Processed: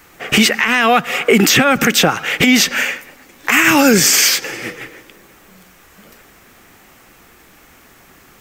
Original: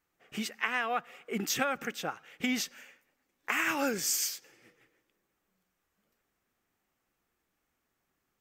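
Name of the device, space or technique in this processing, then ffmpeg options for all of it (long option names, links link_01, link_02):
mastering chain: -filter_complex "[0:a]equalizer=frequency=2200:width_type=o:width=0.77:gain=2,acrossover=split=270|3300[link_01][link_02][link_03];[link_01]acompressor=threshold=-41dB:ratio=4[link_04];[link_02]acompressor=threshold=-40dB:ratio=4[link_05];[link_03]acompressor=threshold=-45dB:ratio=4[link_06];[link_04][link_05][link_06]amix=inputs=3:normalize=0,acompressor=threshold=-42dB:ratio=2,asoftclip=type=tanh:threshold=-26.5dB,alimiter=level_in=35dB:limit=-1dB:release=50:level=0:latency=1,volume=-1dB"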